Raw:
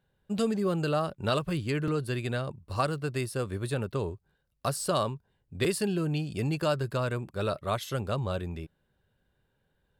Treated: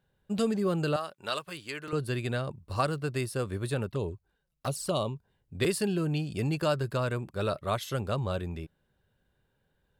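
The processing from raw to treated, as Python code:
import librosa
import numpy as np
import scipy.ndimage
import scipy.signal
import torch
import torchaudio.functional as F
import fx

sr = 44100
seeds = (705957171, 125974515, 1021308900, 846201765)

y = fx.highpass(x, sr, hz=1200.0, slope=6, at=(0.96, 1.93))
y = fx.env_flanger(y, sr, rest_ms=7.2, full_db=-26.5, at=(3.89, 5.15), fade=0.02)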